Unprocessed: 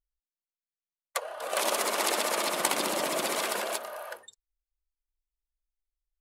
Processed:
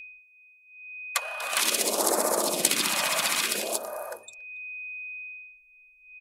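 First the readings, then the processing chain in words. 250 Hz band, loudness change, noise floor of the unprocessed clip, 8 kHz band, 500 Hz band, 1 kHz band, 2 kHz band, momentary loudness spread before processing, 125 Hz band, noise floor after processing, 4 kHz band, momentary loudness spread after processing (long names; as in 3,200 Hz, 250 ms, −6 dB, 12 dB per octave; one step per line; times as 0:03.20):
+3.0 dB, +3.0 dB, below −85 dBFS, +6.5 dB, +1.0 dB, 0.0 dB, +4.0 dB, 12 LU, +4.0 dB, −58 dBFS, +5.0 dB, 17 LU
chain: steady tone 2,500 Hz −42 dBFS
far-end echo of a speakerphone 280 ms, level −25 dB
all-pass phaser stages 2, 0.56 Hz, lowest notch 350–2,800 Hz
level +6 dB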